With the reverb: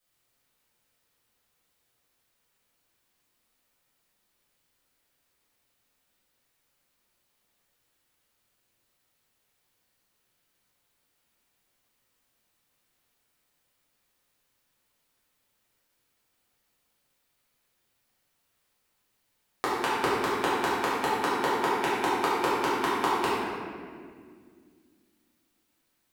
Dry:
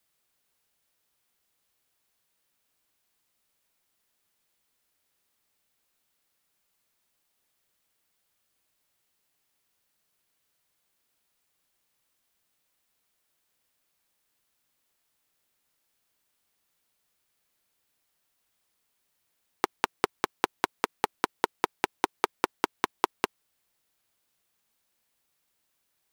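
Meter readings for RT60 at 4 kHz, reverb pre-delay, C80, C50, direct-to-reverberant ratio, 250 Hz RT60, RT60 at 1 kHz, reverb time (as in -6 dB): 1.3 s, 4 ms, -0.5 dB, -2.5 dB, -10.0 dB, 3.1 s, 1.7 s, 2.0 s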